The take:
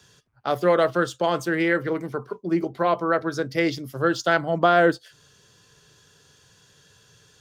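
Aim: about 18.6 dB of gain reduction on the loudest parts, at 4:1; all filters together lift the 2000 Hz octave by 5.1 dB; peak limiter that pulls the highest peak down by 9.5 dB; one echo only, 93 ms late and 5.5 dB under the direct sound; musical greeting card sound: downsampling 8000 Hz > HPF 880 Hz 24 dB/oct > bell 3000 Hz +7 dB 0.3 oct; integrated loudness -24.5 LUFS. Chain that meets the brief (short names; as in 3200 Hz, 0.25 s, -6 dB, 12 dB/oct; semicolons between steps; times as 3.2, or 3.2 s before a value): bell 2000 Hz +6.5 dB; compressor 4:1, threshold -35 dBFS; limiter -26.5 dBFS; echo 93 ms -5.5 dB; downsampling 8000 Hz; HPF 880 Hz 24 dB/oct; bell 3000 Hz +7 dB 0.3 oct; gain +17 dB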